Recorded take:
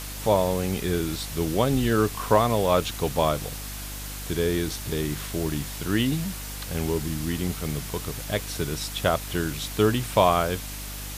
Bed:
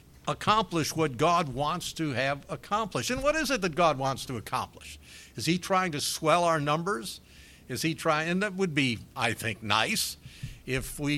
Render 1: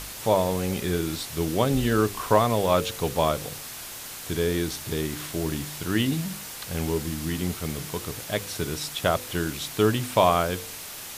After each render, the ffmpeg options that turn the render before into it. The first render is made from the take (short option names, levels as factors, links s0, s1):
-af "bandreject=f=50:t=h:w=4,bandreject=f=100:t=h:w=4,bandreject=f=150:t=h:w=4,bandreject=f=200:t=h:w=4,bandreject=f=250:t=h:w=4,bandreject=f=300:t=h:w=4,bandreject=f=350:t=h:w=4,bandreject=f=400:t=h:w=4,bandreject=f=450:t=h:w=4,bandreject=f=500:t=h:w=4,bandreject=f=550:t=h:w=4"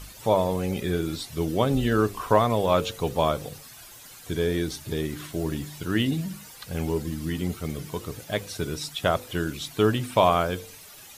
-af "afftdn=nr=12:nf=-39"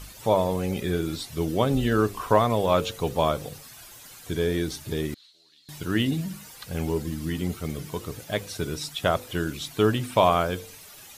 -filter_complex "[0:a]asettb=1/sr,asplit=3[s0][s1][s2];[s0]atrim=end=5.144[s3];[s1]atrim=start=5.14:end=5.69,asetpts=PTS-STARTPTS,afade=t=in:d=0.004:c=qsin,afade=t=out:st=0.546:d=0.004:c=qsin,bandpass=f=4100:t=q:w=10[s4];[s2]atrim=start=5.686[s5];[s3][s4]acrossfade=d=0.004:c1=hsin:c2=qsin[s6];[s6][s5]acrossfade=d=0.004:c1=qsin:c2=hsin"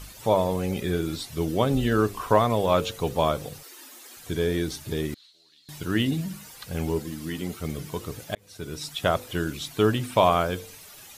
-filter_complex "[0:a]asettb=1/sr,asplit=3[s0][s1][s2];[s0]atrim=end=3.634[s3];[s1]atrim=start=3.63:end=4.17,asetpts=PTS-STARTPTS,afade=t=in:d=0.004:c=qsin,afade=t=out:st=0.536:d=0.004:c=qsin,afreqshift=230[s4];[s2]atrim=start=4.166[s5];[s3][s4]acrossfade=d=0.004:c1=hsin:c2=qsin[s6];[s6][s5]acrossfade=d=0.004:c1=qsin:c2=hsin,asettb=1/sr,asplit=3[s7][s8][s9];[s7]atrim=end=6.994[s10];[s8]atrim=start=6.99:end=7.6,asetpts=PTS-STARTPTS,afade=t=in:d=0.004:c=qsin,afade=t=out:st=0.606:d=0.004:c=qsin,highpass=f=220:p=1[s11];[s9]atrim=start=7.596[s12];[s10][s11]acrossfade=d=0.004:c1=hsin:c2=qsin[s13];[s13][s12]acrossfade=d=0.004:c1=qsin:c2=hsin,asplit=2[s14][s15];[s14]atrim=end=8.35,asetpts=PTS-STARTPTS,afade=t=out:st=8.346:d=0.004:c=hsin[s16];[s15]atrim=start=8.35,asetpts=PTS-STARTPTS,afade=t=in:d=0.59[s17];[s16][s17]concat=n=2:v=0:a=1"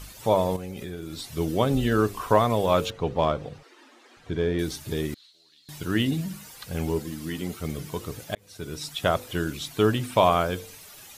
-filter_complex "[0:a]asettb=1/sr,asplit=3[s0][s1][s2];[s0]atrim=end=0.564[s3];[s1]atrim=start=0.56:end=1.28,asetpts=PTS-STARTPTS,afade=t=in:d=0.004:c=qsin,afade=t=out:st=0.716:d=0.004:c=qsin,acompressor=threshold=0.0282:ratio=12:attack=3.2:release=140:knee=1:detection=peak[s4];[s2]atrim=start=1.276[s5];[s3][s4]acrossfade=d=0.004:c1=hsin:c2=qsin[s6];[s6][s5]acrossfade=d=0.004:c1=qsin:c2=hsin,asettb=1/sr,asplit=3[s7][s8][s9];[s7]atrim=end=2.904[s10];[s8]atrim=start=2.9:end=4.59,asetpts=PTS-STARTPTS,afade=t=in:d=0.004:c=qsin,afade=t=out:st=1.686:d=0.004:c=qsin,adynamicsmooth=sensitivity=1:basefreq=3000[s11];[s9]atrim=start=4.586[s12];[s10][s11]acrossfade=d=0.004:c1=hsin:c2=qsin[s13];[s13][s12]acrossfade=d=0.004:c1=qsin:c2=hsin"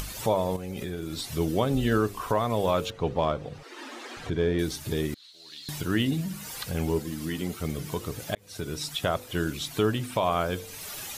-af "acompressor=mode=upward:threshold=0.0398:ratio=2.5,alimiter=limit=0.224:level=0:latency=1:release=397"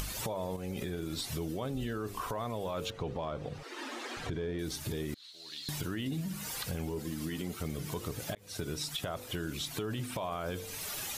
-af "alimiter=limit=0.0794:level=0:latency=1:release=26,acompressor=threshold=0.02:ratio=3"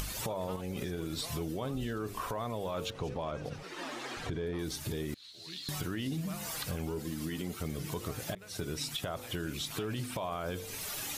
-filter_complex "[1:a]volume=0.0562[s0];[0:a][s0]amix=inputs=2:normalize=0"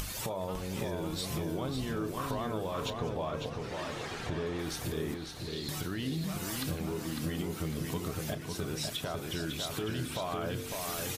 -filter_complex "[0:a]asplit=2[s0][s1];[s1]adelay=31,volume=0.2[s2];[s0][s2]amix=inputs=2:normalize=0,asplit=2[s3][s4];[s4]adelay=552,lowpass=f=4600:p=1,volume=0.631,asplit=2[s5][s6];[s6]adelay=552,lowpass=f=4600:p=1,volume=0.46,asplit=2[s7][s8];[s8]adelay=552,lowpass=f=4600:p=1,volume=0.46,asplit=2[s9][s10];[s10]adelay=552,lowpass=f=4600:p=1,volume=0.46,asplit=2[s11][s12];[s12]adelay=552,lowpass=f=4600:p=1,volume=0.46,asplit=2[s13][s14];[s14]adelay=552,lowpass=f=4600:p=1,volume=0.46[s15];[s5][s7][s9][s11][s13][s15]amix=inputs=6:normalize=0[s16];[s3][s16]amix=inputs=2:normalize=0"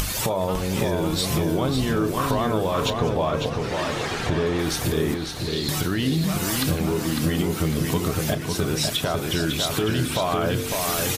-af "volume=3.98"